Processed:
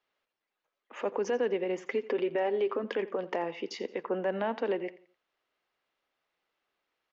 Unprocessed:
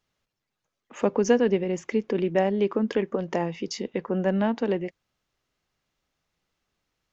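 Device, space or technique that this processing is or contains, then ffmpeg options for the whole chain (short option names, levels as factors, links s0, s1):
DJ mixer with the lows and highs turned down: -filter_complex "[0:a]asettb=1/sr,asplit=3[s0][s1][s2];[s0]atrim=end=1.774[s3];[s1]atrim=start=1.77:end=2.84,asetpts=PTS-STARTPTS,afade=t=in:d=0.004:c=qsin,afade=t=out:st=1.066:d=0.004:c=qsin,aecho=1:1:7.5:0.55,atrim=end_sample=47187[s4];[s2]atrim=start=2.836[s5];[s3][s4]acrossfade=d=0.004:c1=hsin:c2=qsin[s6];[s6][s5]acrossfade=d=0.004:c1=qsin:c2=hsin,acrossover=split=320 4100:gain=0.0891 1 0.126[s7][s8][s9];[s7][s8][s9]amix=inputs=3:normalize=0,alimiter=limit=0.0841:level=0:latency=1:release=77,aecho=1:1:86|172|258:0.126|0.0428|0.0146"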